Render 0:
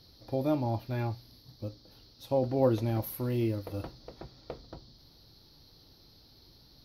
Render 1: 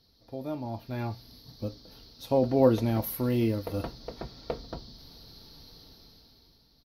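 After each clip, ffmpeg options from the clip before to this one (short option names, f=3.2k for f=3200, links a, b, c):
-af "aecho=1:1:4.4:0.31,dynaudnorm=f=200:g=11:m=15dB,volume=-7.5dB"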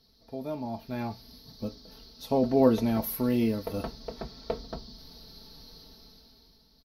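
-af "aecho=1:1:4.6:0.48"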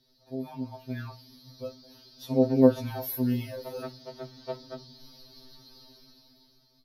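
-af "afftfilt=real='re*2.45*eq(mod(b,6),0)':imag='im*2.45*eq(mod(b,6),0)':win_size=2048:overlap=0.75"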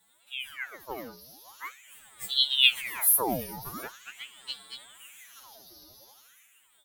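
-af "aexciter=amount=4.9:drive=6.5:freq=5.9k,aeval=exprs='val(0)*sin(2*PI*2000*n/s+2000*0.85/0.43*sin(2*PI*0.43*n/s))':c=same"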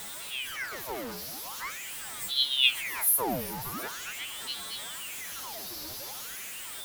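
-af "aeval=exprs='val(0)+0.5*0.0282*sgn(val(0))':c=same,volume=-3.5dB"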